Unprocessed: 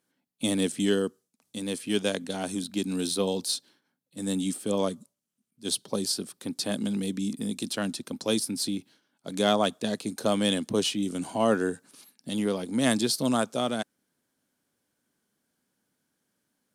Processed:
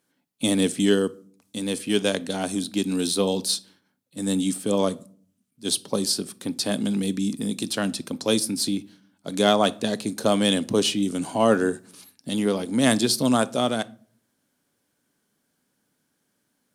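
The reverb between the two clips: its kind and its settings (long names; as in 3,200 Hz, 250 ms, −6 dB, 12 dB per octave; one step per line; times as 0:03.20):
rectangular room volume 450 cubic metres, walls furnished, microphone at 0.32 metres
level +4.5 dB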